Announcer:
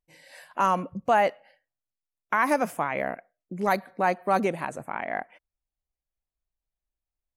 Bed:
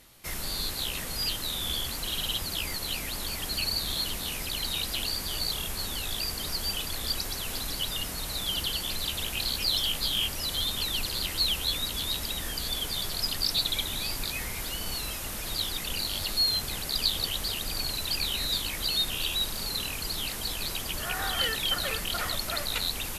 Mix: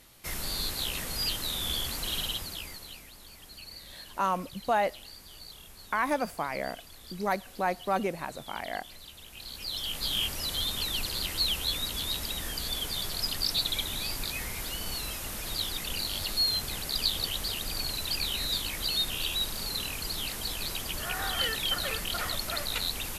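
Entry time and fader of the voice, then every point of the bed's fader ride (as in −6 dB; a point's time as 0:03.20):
3.60 s, −5.0 dB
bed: 0:02.18 −0.5 dB
0:03.13 −16.5 dB
0:09.25 −16.5 dB
0:10.13 −1.5 dB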